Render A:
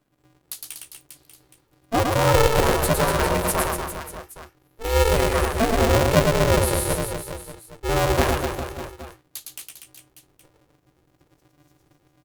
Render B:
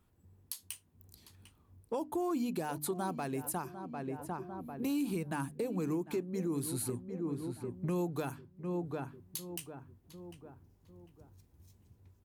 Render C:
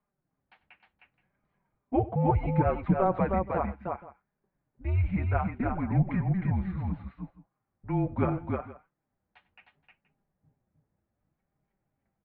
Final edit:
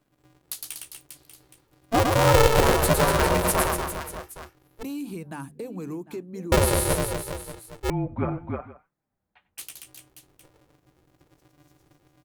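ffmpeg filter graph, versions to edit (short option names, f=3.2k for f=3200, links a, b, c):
-filter_complex "[0:a]asplit=3[a][b][c];[a]atrim=end=4.832[d];[1:a]atrim=start=4.828:end=6.522[e];[b]atrim=start=6.518:end=7.902[f];[2:a]atrim=start=7.898:end=9.582[g];[c]atrim=start=9.578[h];[d][e]acrossfade=d=0.004:c1=hsin:c2=hsin[i];[i][f]acrossfade=d=0.004:c1=hsin:c2=hsin[j];[j][g]acrossfade=d=0.004:c1=hsin:c2=hsin[k];[k][h]acrossfade=d=0.004:c1=hsin:c2=hsin"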